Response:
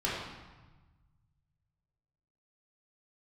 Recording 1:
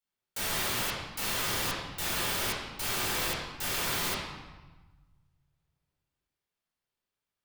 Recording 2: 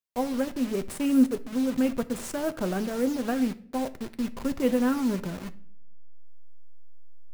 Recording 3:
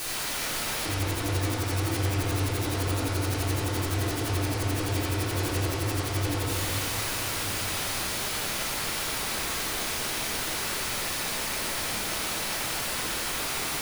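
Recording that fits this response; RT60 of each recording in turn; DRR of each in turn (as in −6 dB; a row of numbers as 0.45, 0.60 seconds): 1; 1.2, 0.55, 2.8 seconds; −7.5, 10.0, −9.5 decibels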